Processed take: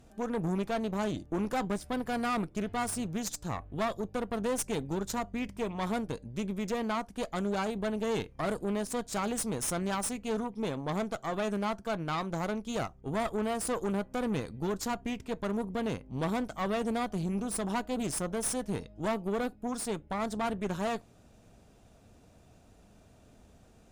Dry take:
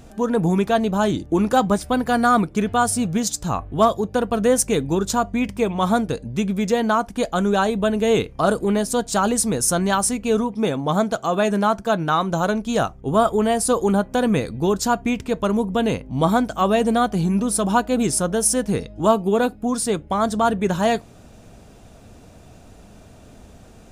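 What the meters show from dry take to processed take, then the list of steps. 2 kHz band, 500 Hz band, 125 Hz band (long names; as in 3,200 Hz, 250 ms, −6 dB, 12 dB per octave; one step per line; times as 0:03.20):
−12.0 dB, −13.5 dB, −12.0 dB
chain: tube saturation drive 18 dB, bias 0.8
level −8 dB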